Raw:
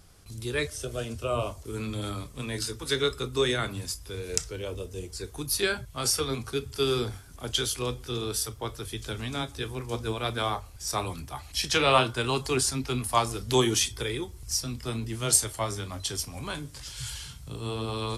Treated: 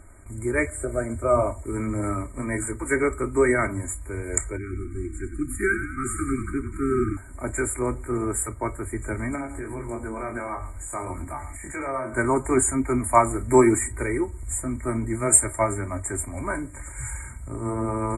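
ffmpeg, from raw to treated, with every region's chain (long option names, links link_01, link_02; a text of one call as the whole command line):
ffmpeg -i in.wav -filter_complex "[0:a]asettb=1/sr,asplit=3[link_01][link_02][link_03];[link_01]atrim=end=4.574[link_04];[link_02]atrim=start=4.57:end=7.17,asetpts=PTS-STARTPTS,afade=type=in:duration=0.004:curve=qsin,afade=type=out:start_time=2.596:duration=0.004:curve=qsin,asuperstop=centerf=690:order=20:qfactor=0.82,highshelf=frequency=3000:gain=-9.5,asplit=8[link_05][link_06][link_07][link_08][link_09][link_10][link_11][link_12];[link_06]adelay=95,afreqshift=-45,volume=-10dB[link_13];[link_07]adelay=190,afreqshift=-90,volume=-14.7dB[link_14];[link_08]adelay=285,afreqshift=-135,volume=-19.5dB[link_15];[link_09]adelay=380,afreqshift=-180,volume=-24.2dB[link_16];[link_10]adelay=475,afreqshift=-225,volume=-28.9dB[link_17];[link_11]adelay=570,afreqshift=-270,volume=-33.7dB[link_18];[link_12]adelay=665,afreqshift=-315,volume=-38.4dB[link_19];[link_05][link_13][link_14][link_15][link_16][link_17][link_18][link_19]amix=inputs=8:normalize=0,atrim=end_sample=114660[link_20];[link_03]atrim=start=7.166[link_21];[link_04][link_20]acrossfade=duration=0.004:curve1=hsin:curve2=qsin[link_22];[link_22][link_21]acrossfade=duration=0.004:curve1=qsin:curve2=hsin,asettb=1/sr,asplit=3[link_23][link_24][link_25];[link_23]atrim=end=9.354[link_26];[link_24]atrim=start=9.35:end=12.16,asetpts=PTS-STARTPTS,afade=type=in:duration=0.004:curve=qsin,afade=type=out:start_time=2.806:duration=0.004:curve=qsin,asplit=2[link_27][link_28];[link_28]adelay=22,volume=-3dB[link_29];[link_27][link_29]amix=inputs=2:normalize=0,atrim=end_sample=123921,acompressor=threshold=-35dB:ratio=4:attack=3.2:release=140:knee=1:detection=peak,aecho=1:1:107:0.2,atrim=end_sample=123921[link_30];[link_25]atrim=start=12.156[link_31];[link_26][link_30]acrossfade=duration=0.004:curve1=hsin:curve2=qsin[link_32];[link_32][link_31]acrossfade=duration=0.004:curve1=qsin:curve2=hsin,lowpass=frequency=9300:width=0.5412,lowpass=frequency=9300:width=1.3066,afftfilt=real='re*(1-between(b*sr/4096,2400,6900))':imag='im*(1-between(b*sr/4096,2400,6900))':win_size=4096:overlap=0.75,aecho=1:1:3.2:0.67,volume=6dB" out.wav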